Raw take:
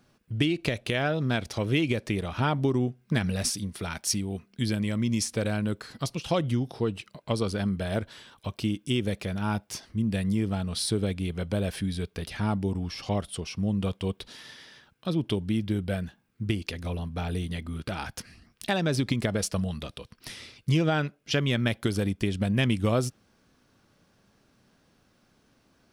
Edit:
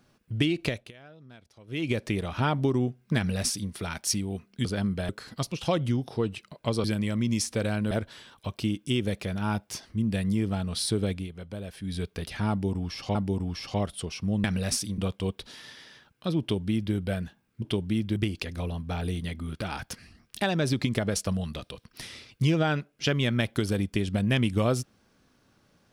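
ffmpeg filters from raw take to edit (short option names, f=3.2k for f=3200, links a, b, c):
-filter_complex "[0:a]asplit=14[a][b][c][d][e][f][g][h][i][j][k][l][m][n];[a]atrim=end=0.92,asetpts=PTS-STARTPTS,afade=t=out:st=0.66:d=0.26:silence=0.0668344[o];[b]atrim=start=0.92:end=1.67,asetpts=PTS-STARTPTS,volume=-23.5dB[p];[c]atrim=start=1.67:end=4.652,asetpts=PTS-STARTPTS,afade=t=in:d=0.26:silence=0.0668344[q];[d]atrim=start=7.468:end=7.912[r];[e]atrim=start=5.718:end=7.472[s];[f]atrim=start=4.648:end=5.722[t];[g]atrim=start=7.908:end=11.29,asetpts=PTS-STARTPTS,afade=t=out:st=3.242:d=0.14:silence=0.334965[u];[h]atrim=start=11.29:end=11.81,asetpts=PTS-STARTPTS,volume=-9.5dB[v];[i]atrim=start=11.81:end=13.152,asetpts=PTS-STARTPTS,afade=t=in:d=0.14:silence=0.334965[w];[j]atrim=start=12.498:end=13.792[x];[k]atrim=start=3.168:end=3.712[y];[l]atrim=start=13.788:end=16.432[z];[m]atrim=start=15.208:end=15.752[aa];[n]atrim=start=16.428[ab];[o][p][q]concat=n=3:v=0:a=1[ac];[ac][r]acrossfade=d=0.004:c1=hsin:c2=hsin[ad];[ad][s]acrossfade=d=0.004:c1=hsin:c2=hsin[ae];[ae][t]acrossfade=d=0.004:c1=hsin:c2=hsin[af];[u][v][w]concat=n=3:v=0:a=1[ag];[af][ag]acrossfade=d=0.004:c1=hsin:c2=hsin[ah];[ah][x]acrossfade=d=0.004:c1=hsin:c2=hsin[ai];[ai][y]acrossfade=d=0.004:c1=hsin:c2=hsin[aj];[aj][z]acrossfade=d=0.004:c1=hsin:c2=hsin[ak];[ak][aa]acrossfade=d=0.004:c1=hsin:c2=hsin[al];[al][ab]acrossfade=d=0.004:c1=hsin:c2=hsin"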